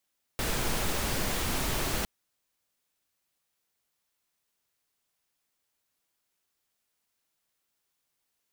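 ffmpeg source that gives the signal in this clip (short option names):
-f lavfi -i "anoisesrc=c=pink:a=0.172:d=1.66:r=44100:seed=1"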